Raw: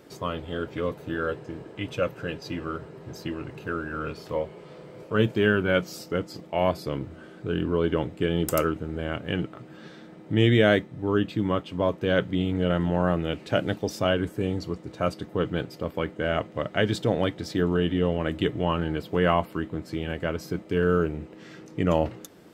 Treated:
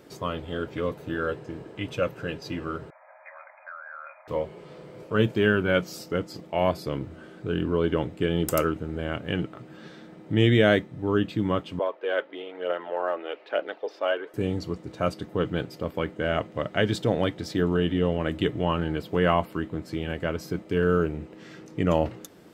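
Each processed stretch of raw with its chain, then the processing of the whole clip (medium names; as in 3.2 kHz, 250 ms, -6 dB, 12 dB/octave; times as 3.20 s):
2.90–4.28 s: brick-wall FIR band-pass 540–2500 Hz + compression 2.5:1, threshold -39 dBFS
11.79–14.34 s: high-pass 440 Hz 24 dB/octave + distance through air 330 m + phaser 1.1 Hz, delay 3.7 ms, feedback 34%
whole clip: none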